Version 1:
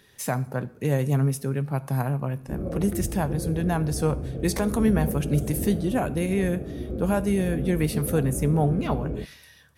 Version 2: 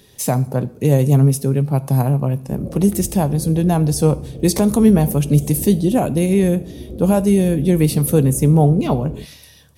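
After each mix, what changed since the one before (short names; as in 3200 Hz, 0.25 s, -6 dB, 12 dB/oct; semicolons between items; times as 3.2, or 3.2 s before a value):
speech +10.0 dB; master: add bell 1600 Hz -12 dB 1.2 oct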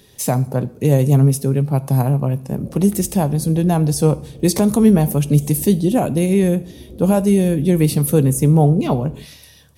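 background -6.0 dB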